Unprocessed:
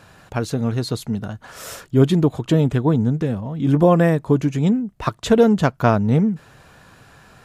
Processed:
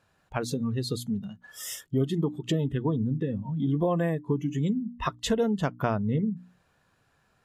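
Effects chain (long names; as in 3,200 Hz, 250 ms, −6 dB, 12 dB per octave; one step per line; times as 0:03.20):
noise reduction from a noise print of the clip's start 20 dB
mains-hum notches 60/120/180/240/300 Hz
downward compressor 2.5 to 1, threshold −28 dBFS, peak gain reduction 13 dB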